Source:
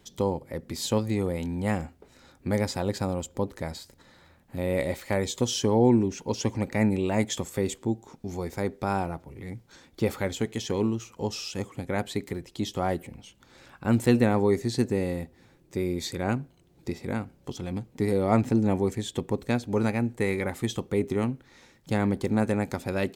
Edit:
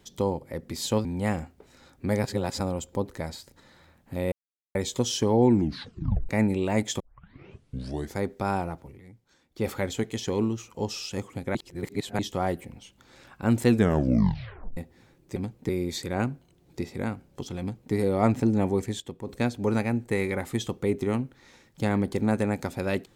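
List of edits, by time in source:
1.05–1.47 cut
2.66–3.02 reverse
4.74–5.17 mute
5.94 tape stop 0.77 s
7.42 tape start 1.19 s
9.29–10.1 dip -12 dB, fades 0.14 s
11.97–12.61 reverse
14.11 tape stop 1.08 s
17.69–18.02 copy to 15.78
19.09–19.36 gain -8.5 dB

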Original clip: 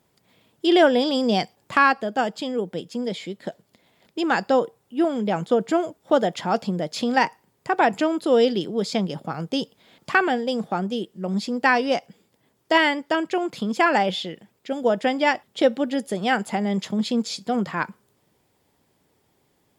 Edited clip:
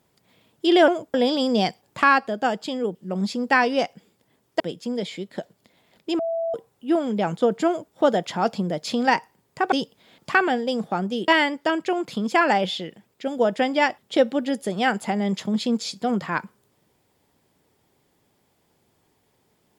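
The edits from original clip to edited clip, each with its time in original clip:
4.28–4.63 bleep 663 Hz -22.5 dBFS
5.76–6.02 copy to 0.88
7.81–9.52 cut
11.08–12.73 move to 2.69

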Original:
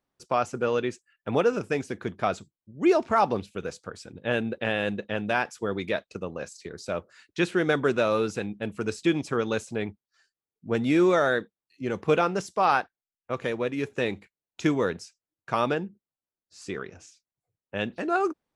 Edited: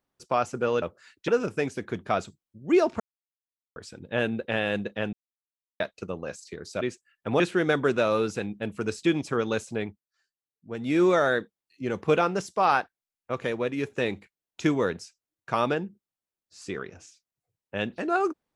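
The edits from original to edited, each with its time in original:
0.82–1.41 swap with 6.94–7.4
3.13–3.89 mute
5.26–5.93 mute
9.78–11.04 dip -9 dB, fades 0.27 s

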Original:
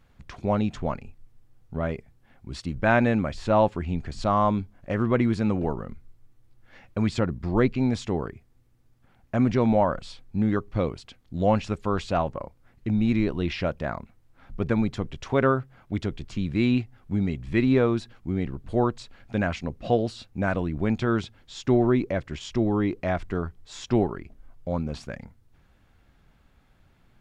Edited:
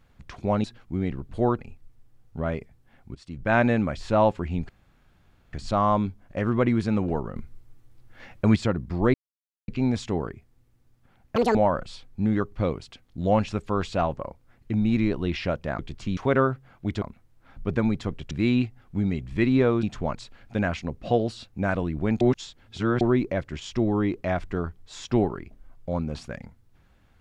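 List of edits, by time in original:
0.64–0.96 swap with 17.99–18.94
2.52–2.95 fade in, from -20.5 dB
4.06 insert room tone 0.84 s
5.89–7.09 gain +5 dB
7.67 insert silence 0.54 s
9.35–9.71 speed 190%
13.95–15.24 swap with 16.09–16.47
21–21.8 reverse

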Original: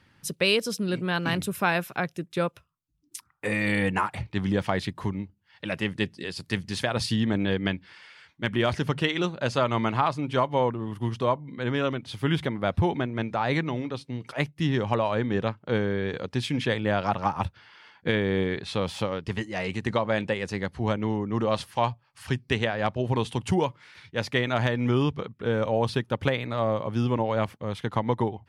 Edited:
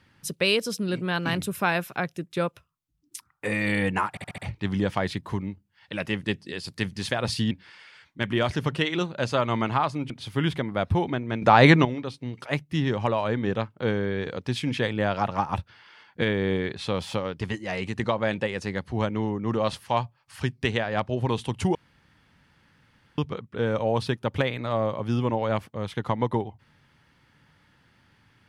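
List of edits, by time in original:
4.1 stutter 0.07 s, 5 plays
7.23–7.74 cut
10.33–11.97 cut
13.29–13.72 gain +11 dB
23.62–25.05 room tone

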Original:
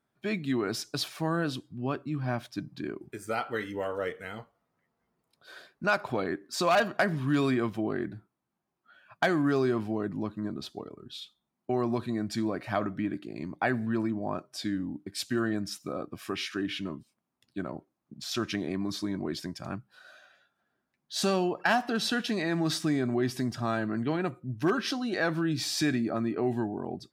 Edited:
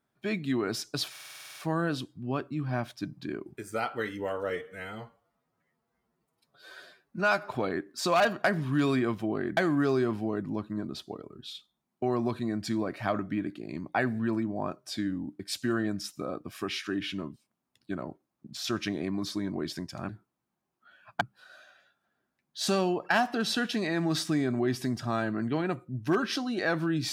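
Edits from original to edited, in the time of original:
1.11 stutter 0.05 s, 10 plays
4.05–6.05 stretch 1.5×
8.12–9.24 move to 19.76

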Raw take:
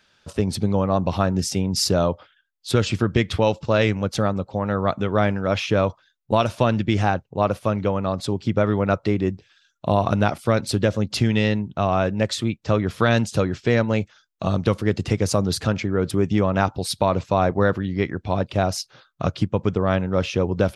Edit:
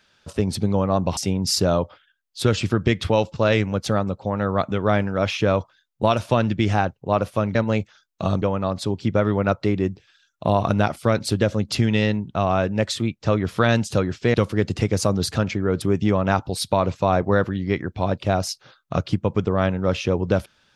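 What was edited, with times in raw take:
1.17–1.46 cut
13.76–14.63 move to 7.84

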